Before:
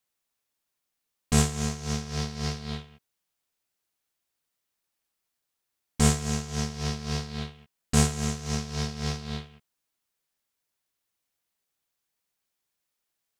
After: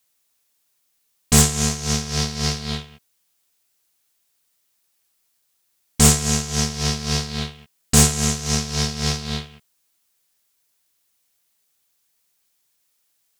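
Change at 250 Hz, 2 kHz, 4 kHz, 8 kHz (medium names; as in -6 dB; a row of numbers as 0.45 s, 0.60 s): +6.0 dB, +8.0 dB, +11.5 dB, +13.0 dB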